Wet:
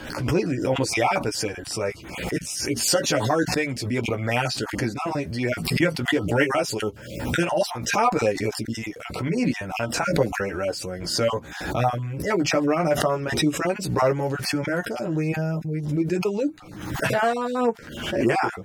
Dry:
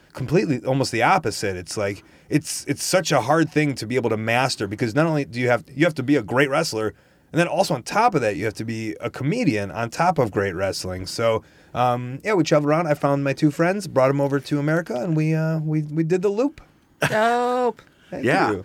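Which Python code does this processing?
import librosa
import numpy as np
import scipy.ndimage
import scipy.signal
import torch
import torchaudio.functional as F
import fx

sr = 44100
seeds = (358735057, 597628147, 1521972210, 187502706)

y = fx.spec_dropout(x, sr, seeds[0], share_pct=23)
y = fx.chorus_voices(y, sr, voices=6, hz=0.11, base_ms=13, depth_ms=4.3, mix_pct=45)
y = fx.pre_swell(y, sr, db_per_s=57.0)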